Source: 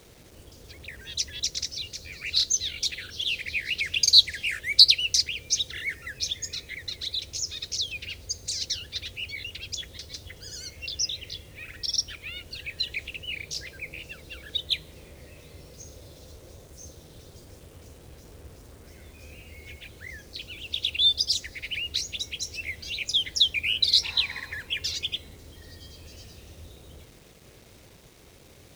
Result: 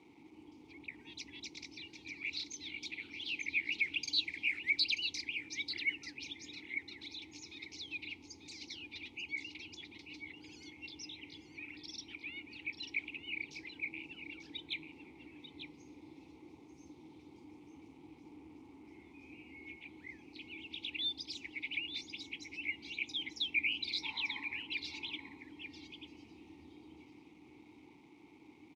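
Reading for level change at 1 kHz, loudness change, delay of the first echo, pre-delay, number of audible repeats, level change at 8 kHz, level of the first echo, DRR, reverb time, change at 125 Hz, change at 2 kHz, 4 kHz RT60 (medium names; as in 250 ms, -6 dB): -5.0 dB, -14.0 dB, 891 ms, no reverb, 1, -22.5 dB, -9.0 dB, no reverb, no reverb, -17.5 dB, -5.0 dB, no reverb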